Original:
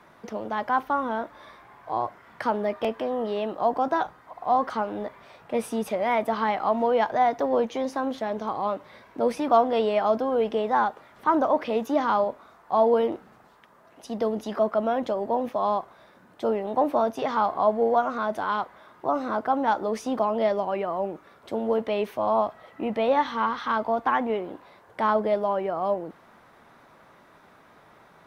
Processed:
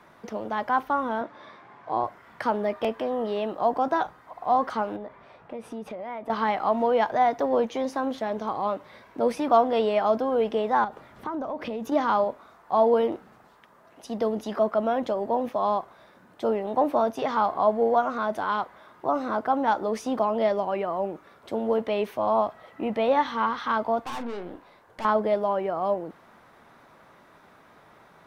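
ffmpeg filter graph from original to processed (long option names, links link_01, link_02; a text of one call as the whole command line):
ffmpeg -i in.wav -filter_complex "[0:a]asettb=1/sr,asplit=3[link_01][link_02][link_03];[link_01]atrim=end=1.214[link_04];[link_02]atrim=start=1.21:end=2.04,asetpts=PTS-STARTPTS,afade=type=in:duration=0.004:curve=qsin,afade=type=out:start_time=0.826:duration=0.004:curve=qsin,highpass=170,lowpass=5600,lowshelf=frequency=260:gain=8[link_05];[link_03]atrim=start=2.036[link_06];[link_04][link_05]acrossfade=duration=0.004:curve1=hsin:curve2=qsin[link_07];[link_07][link_06]acrossfade=duration=0.004:curve1=qsin:curve2=hsin,asettb=1/sr,asplit=3[link_08][link_09][link_10];[link_08]atrim=end=4.964[link_11];[link_09]atrim=start=4.96:end=6.3,asetpts=PTS-STARTPTS,afade=type=in:duration=0.004:curve=qsin,afade=type=out:start_time=1.336:duration=0.004:curve=qsin,lowpass=frequency=1800:poles=1,acompressor=threshold=-33dB:ratio=5:attack=3.2:release=140:knee=1:detection=peak[link_12];[link_10]atrim=start=6.296[link_13];[link_11][link_12]acrossfade=duration=0.004:curve1=hsin:curve2=qsin[link_14];[link_14][link_13]acrossfade=duration=0.004:curve1=qsin:curve2=hsin,asettb=1/sr,asplit=3[link_15][link_16][link_17];[link_15]atrim=end=10.844[link_18];[link_16]atrim=start=10.84:end=11.92,asetpts=PTS-STARTPTS,afade=type=in:duration=0.004:curve=qsin,afade=type=out:start_time=1.076:duration=0.004:curve=qsin,lowshelf=frequency=310:gain=9.5,acompressor=threshold=-28dB:ratio=8:attack=3.2:release=140:knee=1:detection=peak[link_19];[link_17]atrim=start=11.916[link_20];[link_18][link_19]acrossfade=duration=0.004:curve1=hsin:curve2=qsin[link_21];[link_21][link_20]acrossfade=duration=0.004:curve1=qsin:curve2=hsin,asettb=1/sr,asplit=3[link_22][link_23][link_24];[link_22]atrim=end=24.044[link_25];[link_23]atrim=start=24.04:end=25.05,asetpts=PTS-STARTPTS,afade=type=in:duration=0.004:curve=qsin,afade=type=out:start_time=1.006:duration=0.004:curve=qsin,aeval=exprs='(tanh(39.8*val(0)+0.6)-tanh(0.6))/39.8':channel_layout=same,asplit=2[link_26][link_27];[link_27]adelay=34,volume=-10dB[link_28];[link_26][link_28]amix=inputs=2:normalize=0,atrim=end_sample=44541[link_29];[link_24]atrim=start=25.046[link_30];[link_25][link_29]acrossfade=duration=0.004:curve1=hsin:curve2=qsin[link_31];[link_31][link_30]acrossfade=duration=0.004:curve1=qsin:curve2=hsin" out.wav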